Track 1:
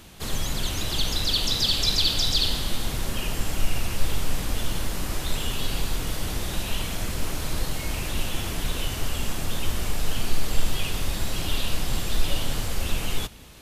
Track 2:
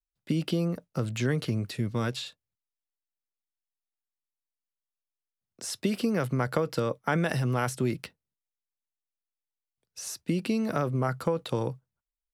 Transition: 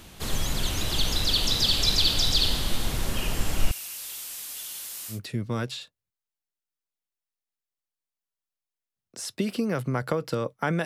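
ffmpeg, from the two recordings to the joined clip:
ffmpeg -i cue0.wav -i cue1.wav -filter_complex "[0:a]asettb=1/sr,asplit=3[link_01][link_02][link_03];[link_01]atrim=end=3.714[link_04];[link_02]atrim=start=3.71:end=5.2,asetpts=PTS-STARTPTS,afade=type=in:duration=0.004:curve=qsin,afade=type=out:start_time=1.486:duration=0.004:curve=qsin,aderivative[link_05];[link_03]atrim=start=5.196[link_06];[link_04][link_05]acrossfade=duration=0.004:curve1=hsin:curve2=qsin[link_07];[link_07][link_06]acrossfade=duration=0.004:curve1=qsin:curve2=hsin,apad=whole_dur=10.85,atrim=end=10.85,atrim=end=5.2,asetpts=PTS-STARTPTS[link_08];[1:a]atrim=start=1.53:end=7.3,asetpts=PTS-STARTPTS[link_09];[link_08][link_09]acrossfade=duration=0.12:curve1=tri:curve2=tri" out.wav

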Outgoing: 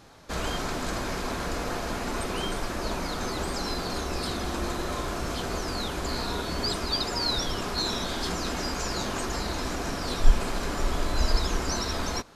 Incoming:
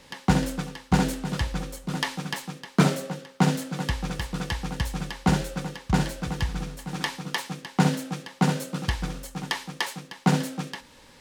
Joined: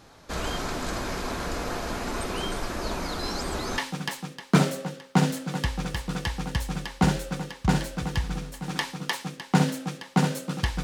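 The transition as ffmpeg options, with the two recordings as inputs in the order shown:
ffmpeg -i cue0.wav -i cue1.wav -filter_complex "[0:a]apad=whole_dur=10.83,atrim=end=10.83,asplit=2[link_01][link_02];[link_01]atrim=end=3.192[link_03];[link_02]atrim=start=3.188:end=3.782,asetpts=PTS-STARTPTS,areverse[link_04];[1:a]atrim=start=2.028:end=9.08[link_05];[link_03][link_04]acrossfade=duration=0.004:curve1=hsin:curve2=hsin[link_06];[link_06][link_05]acrossfade=duration=0.004:curve1=hsin:curve2=hsin" out.wav

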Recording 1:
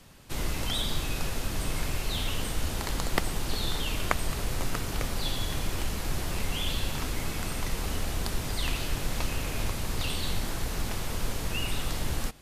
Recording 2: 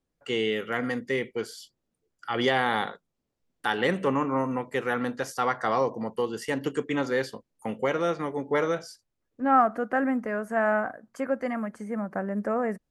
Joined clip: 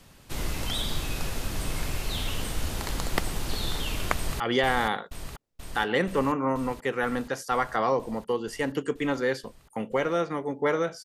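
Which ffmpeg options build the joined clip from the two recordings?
ffmpeg -i cue0.wav -i cue1.wav -filter_complex "[0:a]apad=whole_dur=11.04,atrim=end=11.04,atrim=end=4.402[link_01];[1:a]atrim=start=2.288:end=8.93[link_02];[link_01][link_02]acrossfade=duration=0.004:curve1=hsin:curve2=hsin,asplit=2[link_03][link_04];[link_04]afade=type=in:start_time=4.15:duration=0.01,afade=type=out:start_time=4.4:duration=0.01,aecho=0:1:480|960|1440|1920|2400|2880|3360|3840|4320|4800|5280|5760:0.501187|0.40095|0.32076|0.256608|0.205286|0.164229|0.131383|0.105107|0.0840853|0.0672682|0.0538146|0.0430517[link_05];[link_03][link_05]amix=inputs=2:normalize=0" out.wav

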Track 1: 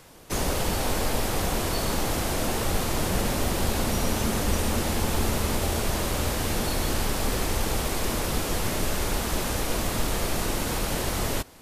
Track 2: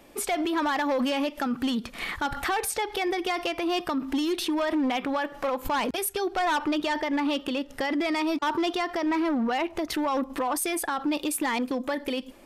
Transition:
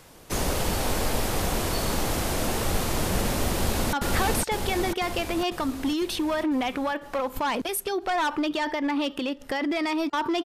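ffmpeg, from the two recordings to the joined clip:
ffmpeg -i cue0.wav -i cue1.wav -filter_complex "[0:a]apad=whole_dur=10.44,atrim=end=10.44,atrim=end=3.932[link_01];[1:a]atrim=start=2.218:end=8.73[link_02];[link_01][link_02]acrossfade=duration=0.004:curve1=hsin:curve2=hsin,asplit=2[link_03][link_04];[link_04]afade=type=in:start_time=3.51:duration=0.01,afade=type=out:start_time=3.93:duration=0.01,aecho=0:1:500|1000|1500|2000|2500|3000|3500|4000|4500:0.944061|0.566437|0.339862|0.203917|0.12235|0.0734102|0.0440461|0.0264277|0.0158566[link_05];[link_03][link_05]amix=inputs=2:normalize=0" out.wav

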